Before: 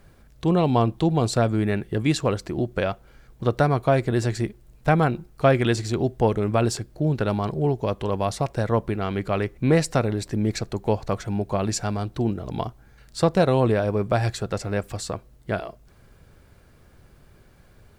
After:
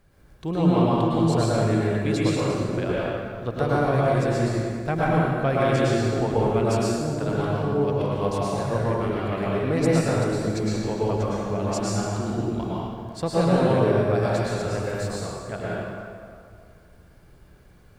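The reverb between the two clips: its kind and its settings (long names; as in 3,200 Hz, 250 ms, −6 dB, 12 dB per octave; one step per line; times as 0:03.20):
dense smooth reverb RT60 2.2 s, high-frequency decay 0.65×, pre-delay 95 ms, DRR −7 dB
level −8 dB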